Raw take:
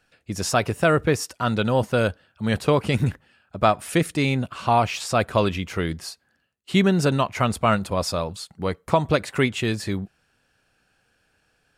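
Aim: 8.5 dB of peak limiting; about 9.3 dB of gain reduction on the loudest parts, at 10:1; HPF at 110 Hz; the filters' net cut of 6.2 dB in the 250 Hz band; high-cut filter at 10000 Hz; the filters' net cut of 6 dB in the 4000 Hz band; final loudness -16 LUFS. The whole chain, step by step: HPF 110 Hz; LPF 10000 Hz; bell 250 Hz -8.5 dB; bell 4000 Hz -8 dB; compressor 10:1, threshold -24 dBFS; gain +17 dB; limiter -2.5 dBFS

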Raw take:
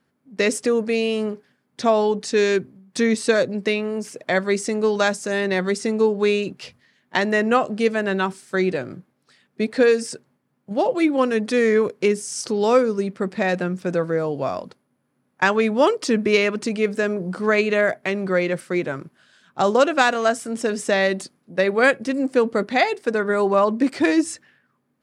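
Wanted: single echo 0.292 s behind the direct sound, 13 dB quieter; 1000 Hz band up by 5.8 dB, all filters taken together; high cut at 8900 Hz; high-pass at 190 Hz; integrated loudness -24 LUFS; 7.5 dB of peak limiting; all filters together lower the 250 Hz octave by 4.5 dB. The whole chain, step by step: HPF 190 Hz; LPF 8900 Hz; bell 250 Hz -4.5 dB; bell 1000 Hz +8 dB; limiter -7 dBFS; echo 0.292 s -13 dB; gain -3 dB

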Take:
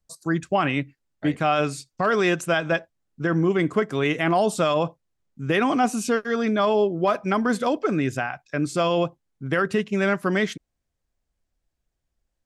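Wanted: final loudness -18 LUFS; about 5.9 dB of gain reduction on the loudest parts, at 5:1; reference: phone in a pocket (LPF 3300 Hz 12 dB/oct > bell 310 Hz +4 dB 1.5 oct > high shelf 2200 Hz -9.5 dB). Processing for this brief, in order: compressor 5:1, threshold -23 dBFS; LPF 3300 Hz 12 dB/oct; bell 310 Hz +4 dB 1.5 oct; high shelf 2200 Hz -9.5 dB; gain +9 dB

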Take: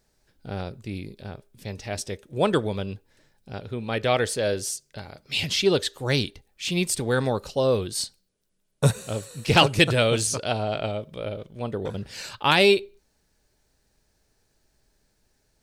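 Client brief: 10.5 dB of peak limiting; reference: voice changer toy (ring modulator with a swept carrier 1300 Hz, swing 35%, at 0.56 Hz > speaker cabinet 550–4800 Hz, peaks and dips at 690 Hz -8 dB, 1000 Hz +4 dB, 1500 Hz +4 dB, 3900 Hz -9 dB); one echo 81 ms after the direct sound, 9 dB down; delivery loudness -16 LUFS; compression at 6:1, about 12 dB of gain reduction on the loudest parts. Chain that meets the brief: compressor 6:1, threshold -26 dBFS; limiter -24 dBFS; echo 81 ms -9 dB; ring modulator with a swept carrier 1300 Hz, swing 35%, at 0.56 Hz; speaker cabinet 550–4800 Hz, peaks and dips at 690 Hz -8 dB, 1000 Hz +4 dB, 1500 Hz +4 dB, 3900 Hz -9 dB; gain +20 dB

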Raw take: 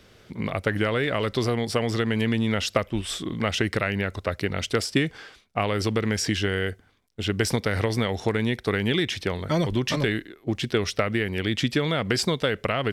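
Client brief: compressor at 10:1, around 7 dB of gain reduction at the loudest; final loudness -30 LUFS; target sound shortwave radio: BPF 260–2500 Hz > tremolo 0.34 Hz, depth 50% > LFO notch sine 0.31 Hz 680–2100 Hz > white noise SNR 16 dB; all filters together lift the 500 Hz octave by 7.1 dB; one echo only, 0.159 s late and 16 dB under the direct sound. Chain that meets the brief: bell 500 Hz +9 dB; compressor 10:1, threshold -21 dBFS; BPF 260–2500 Hz; echo 0.159 s -16 dB; tremolo 0.34 Hz, depth 50%; LFO notch sine 0.31 Hz 680–2100 Hz; white noise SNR 16 dB; gain +3.5 dB

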